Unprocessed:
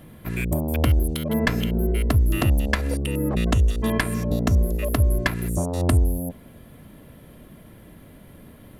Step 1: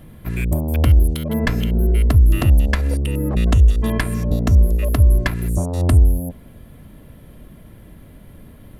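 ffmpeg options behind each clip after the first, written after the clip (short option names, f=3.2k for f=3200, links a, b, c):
-af "lowshelf=f=93:g=11"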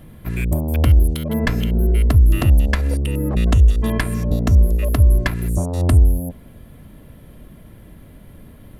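-af anull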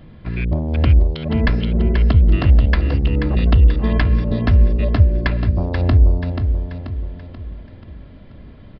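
-filter_complex "[0:a]asplit=2[a][b];[b]aecho=0:1:484|968|1452|1936|2420:0.447|0.205|0.0945|0.0435|0.02[c];[a][c]amix=inputs=2:normalize=0,aresample=11025,aresample=44100"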